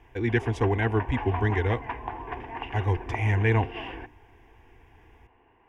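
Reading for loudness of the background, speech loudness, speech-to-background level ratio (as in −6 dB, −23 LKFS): −37.5 LKFS, −27.0 LKFS, 10.5 dB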